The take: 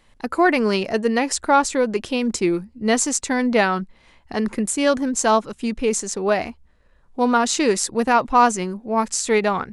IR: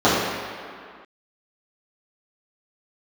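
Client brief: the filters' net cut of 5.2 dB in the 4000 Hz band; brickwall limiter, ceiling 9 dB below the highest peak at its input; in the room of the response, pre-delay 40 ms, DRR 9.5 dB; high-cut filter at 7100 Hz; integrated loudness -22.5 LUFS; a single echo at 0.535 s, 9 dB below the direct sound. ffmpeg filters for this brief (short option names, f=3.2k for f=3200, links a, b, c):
-filter_complex "[0:a]lowpass=7.1k,equalizer=f=4k:t=o:g=-6.5,alimiter=limit=-13.5dB:level=0:latency=1,aecho=1:1:535:0.355,asplit=2[a][b];[1:a]atrim=start_sample=2205,adelay=40[c];[b][c]afir=irnorm=-1:irlink=0,volume=-35dB[d];[a][d]amix=inputs=2:normalize=0,volume=0.5dB"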